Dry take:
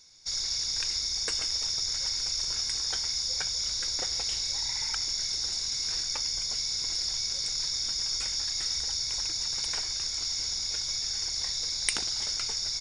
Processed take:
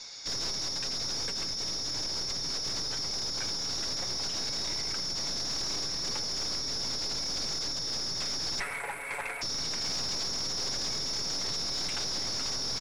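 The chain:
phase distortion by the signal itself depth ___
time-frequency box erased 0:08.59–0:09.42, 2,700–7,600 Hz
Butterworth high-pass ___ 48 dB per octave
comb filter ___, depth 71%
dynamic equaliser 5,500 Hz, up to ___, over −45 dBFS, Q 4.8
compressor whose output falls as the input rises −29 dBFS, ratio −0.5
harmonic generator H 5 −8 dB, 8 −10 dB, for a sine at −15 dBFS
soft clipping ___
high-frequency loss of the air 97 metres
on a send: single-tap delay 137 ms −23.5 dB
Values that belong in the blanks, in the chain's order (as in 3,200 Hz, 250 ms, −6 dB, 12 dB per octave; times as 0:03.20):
0.051 ms, 430 Hz, 7.1 ms, +8 dB, −26 dBFS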